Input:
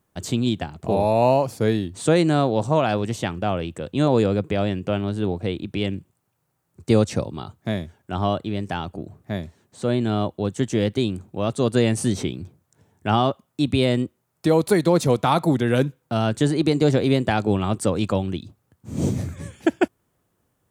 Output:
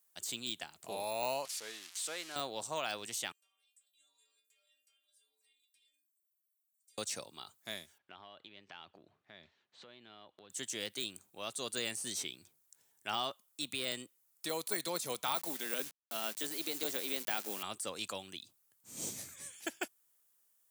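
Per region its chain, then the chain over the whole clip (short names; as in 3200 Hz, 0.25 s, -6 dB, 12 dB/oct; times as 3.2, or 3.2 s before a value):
1.45–2.36 switching spikes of -14.5 dBFS + HPF 900 Hz 6 dB/oct + tape spacing loss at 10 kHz 26 dB
3.32–6.98 differentiator + compressor 4:1, threshold -50 dBFS + metallic resonator 140 Hz, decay 0.66 s, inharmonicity 0.008
7.98–10.5 LPF 3700 Hz 24 dB/oct + compressor 10:1, threshold -30 dBFS
15.35–17.63 level-crossing sampler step -35.5 dBFS + HPF 180 Hz 24 dB/oct
whole clip: de-esser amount 75%; differentiator; gain +2 dB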